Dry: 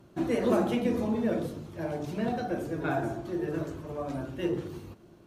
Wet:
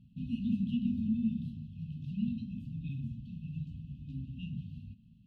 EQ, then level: brick-wall FIR band-stop 260–2500 Hz; air absorption 480 m; 0.0 dB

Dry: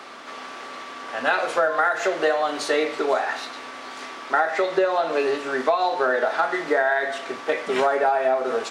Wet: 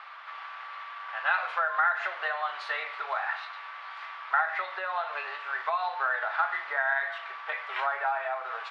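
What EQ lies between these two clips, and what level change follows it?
HPF 950 Hz 24 dB/oct; air absorption 390 m; 0.0 dB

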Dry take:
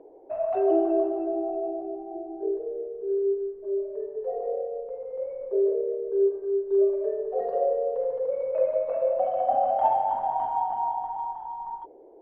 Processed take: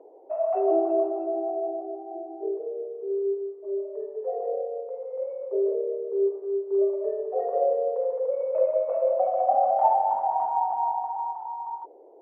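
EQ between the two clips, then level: BPF 530–2200 Hz; tilt shelf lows +5.5 dB, about 1400 Hz; notch 1600 Hz, Q 7.7; 0.0 dB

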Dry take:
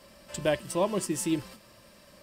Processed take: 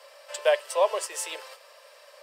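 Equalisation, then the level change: steep high-pass 450 Hz 72 dB/oct; high shelf 6900 Hz -7.5 dB; +5.5 dB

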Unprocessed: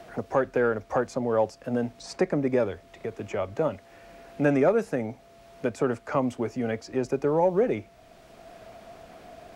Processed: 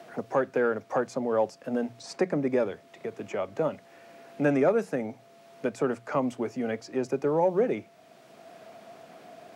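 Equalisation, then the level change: HPF 130 Hz 24 dB/oct; notches 60/120/180 Hz; -1.5 dB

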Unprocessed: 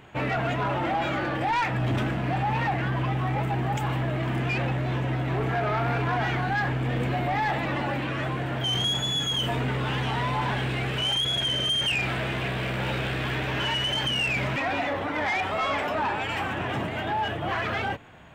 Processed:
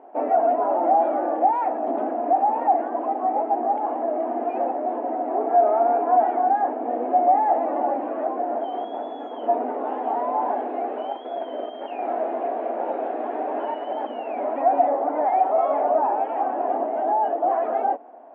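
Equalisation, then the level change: brick-wall FIR high-pass 230 Hz; synth low-pass 720 Hz, resonance Q 4.9; air absorption 60 m; 0.0 dB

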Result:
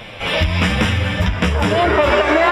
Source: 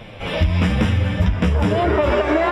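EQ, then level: tilt shelf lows -5 dB, about 700 Hz; +4.0 dB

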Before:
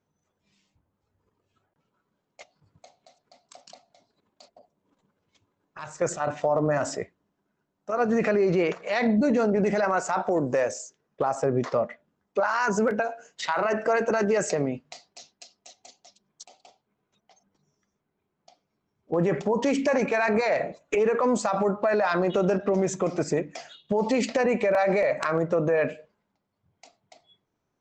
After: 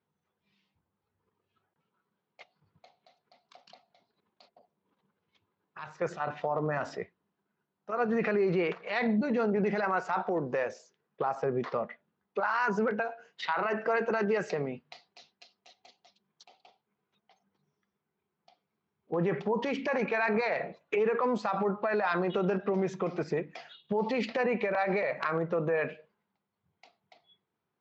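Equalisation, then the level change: speaker cabinet 110–4200 Hz, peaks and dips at 120 Hz -5 dB, 280 Hz -8 dB, 600 Hz -7 dB; -3.0 dB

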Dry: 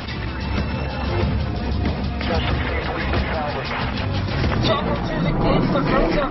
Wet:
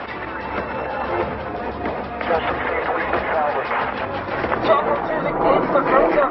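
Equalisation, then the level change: LPF 4200 Hz 12 dB/oct; three-band isolator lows -21 dB, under 350 Hz, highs -17 dB, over 2100 Hz; +6.5 dB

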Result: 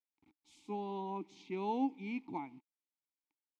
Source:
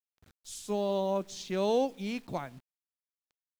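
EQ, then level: vowel filter u; +7.5 dB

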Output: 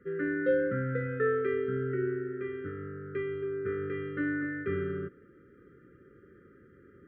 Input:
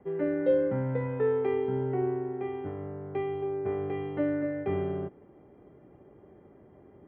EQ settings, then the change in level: brick-wall FIR band-stop 560–1200 Hz; band shelf 1400 Hz +12.5 dB 1 oct; -2.0 dB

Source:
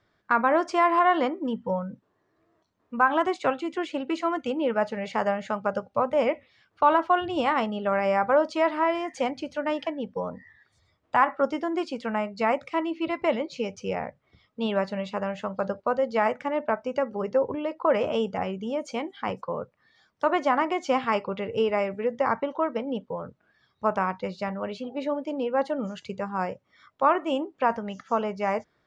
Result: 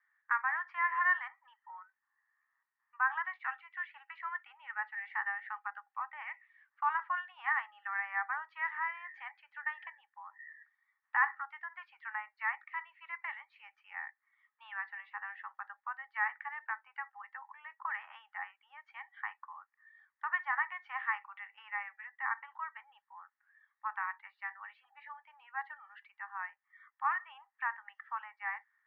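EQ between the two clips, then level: rippled Chebyshev high-pass 800 Hz, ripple 3 dB; ladder low-pass 1900 Hz, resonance 85%; 0.0 dB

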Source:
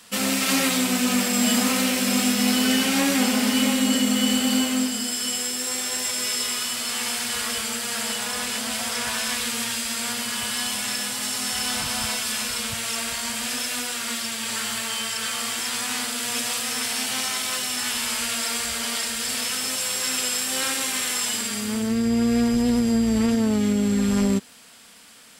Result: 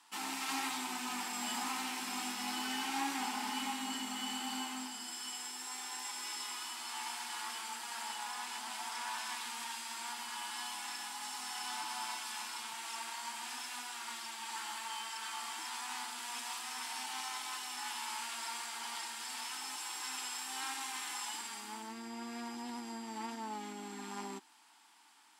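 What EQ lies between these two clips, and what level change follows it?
double band-pass 530 Hz, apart 1.4 oct; differentiator; +17.5 dB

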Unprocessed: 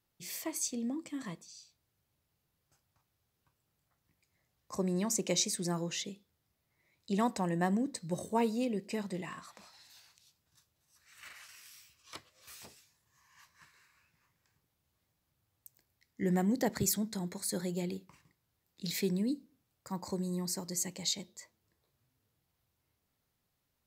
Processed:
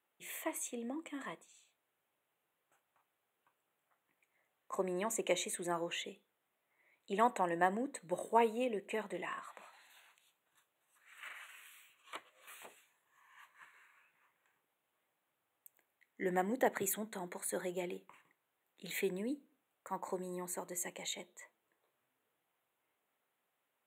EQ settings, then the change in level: HPF 460 Hz 12 dB/oct; Butterworth band-stop 5100 Hz, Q 1.2; high shelf 6500 Hz -9 dB; +3.5 dB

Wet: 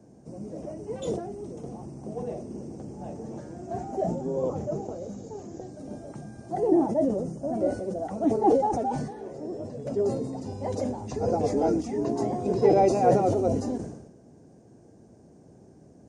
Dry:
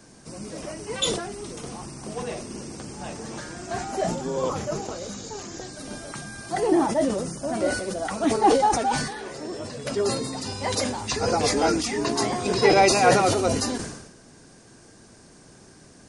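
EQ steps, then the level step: HPF 66 Hz; tape spacing loss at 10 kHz 23 dB; band shelf 2200 Hz -15 dB 2.5 oct; 0.0 dB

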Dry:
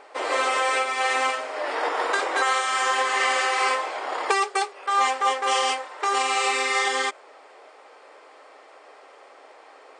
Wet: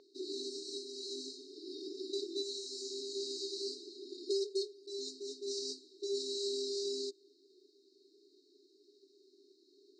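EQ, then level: brick-wall FIR band-stop 410–3700 Hz; air absorption 200 m; resonant low shelf 370 Hz -6.5 dB, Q 1.5; +2.0 dB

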